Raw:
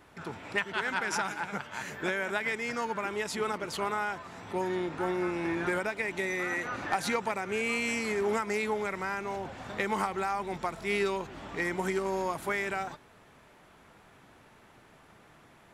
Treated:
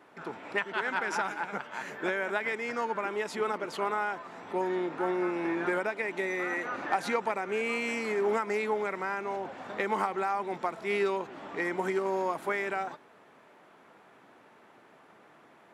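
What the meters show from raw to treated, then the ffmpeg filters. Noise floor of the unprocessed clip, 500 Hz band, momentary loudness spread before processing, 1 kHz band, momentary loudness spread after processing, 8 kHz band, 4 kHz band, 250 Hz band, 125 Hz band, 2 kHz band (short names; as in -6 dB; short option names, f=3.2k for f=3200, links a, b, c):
-58 dBFS, +1.5 dB, 7 LU, +1.5 dB, 6 LU, -7.0 dB, -4.0 dB, -0.5 dB, -5.5 dB, -0.5 dB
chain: -af "highpass=260,highshelf=f=3k:g=-11,volume=2.5dB"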